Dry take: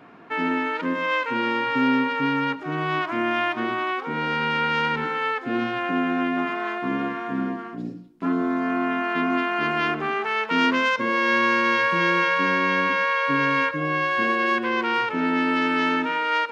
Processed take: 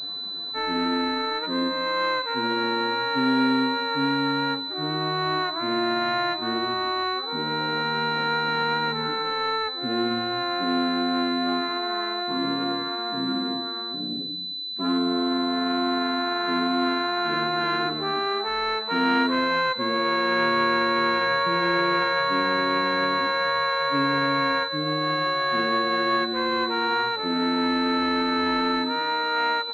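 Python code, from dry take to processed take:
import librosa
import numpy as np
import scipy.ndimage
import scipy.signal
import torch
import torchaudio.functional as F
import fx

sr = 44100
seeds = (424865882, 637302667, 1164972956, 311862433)

y = fx.dynamic_eq(x, sr, hz=190.0, q=3.1, threshold_db=-43.0, ratio=4.0, max_db=-6)
y = fx.stretch_vocoder(y, sr, factor=1.8)
y = fx.pwm(y, sr, carrier_hz=4000.0)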